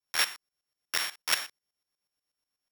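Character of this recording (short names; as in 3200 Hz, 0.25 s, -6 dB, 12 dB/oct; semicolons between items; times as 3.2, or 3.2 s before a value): a buzz of ramps at a fixed pitch in blocks of 8 samples; tremolo saw up 8.2 Hz, depth 80%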